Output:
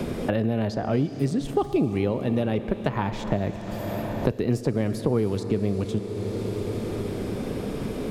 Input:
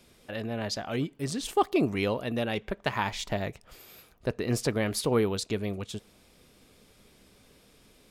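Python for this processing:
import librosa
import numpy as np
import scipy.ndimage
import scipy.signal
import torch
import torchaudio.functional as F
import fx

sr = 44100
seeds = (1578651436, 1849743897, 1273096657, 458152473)

y = fx.tilt_shelf(x, sr, db=7.5, hz=870.0)
y = fx.rev_schroeder(y, sr, rt60_s=3.9, comb_ms=28, drr_db=11.0)
y = fx.band_squash(y, sr, depth_pct=100)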